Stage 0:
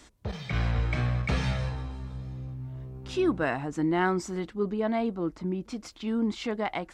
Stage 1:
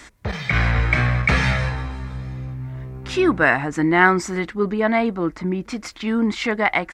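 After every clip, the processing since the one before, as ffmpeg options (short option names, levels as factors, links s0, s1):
-af "firequalizer=gain_entry='entry(440,0);entry(2000,11);entry(2900,2)':delay=0.05:min_phase=1,volume=2.37"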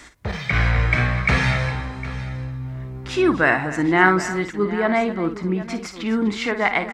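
-af "aecho=1:1:54|251|758:0.316|0.178|0.168,volume=0.891"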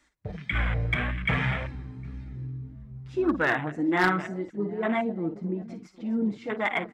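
-af "afwtdn=0.0708,flanger=delay=3.3:depth=3.6:regen=-17:speed=1.8:shape=sinusoidal,asoftclip=type=hard:threshold=0.266,volume=0.668"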